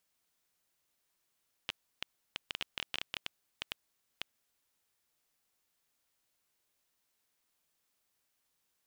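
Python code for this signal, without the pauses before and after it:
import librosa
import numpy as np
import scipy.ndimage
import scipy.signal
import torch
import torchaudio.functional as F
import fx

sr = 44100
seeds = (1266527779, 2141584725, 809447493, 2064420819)

y = fx.geiger_clicks(sr, seeds[0], length_s=2.89, per_s=7.3, level_db=-17.5)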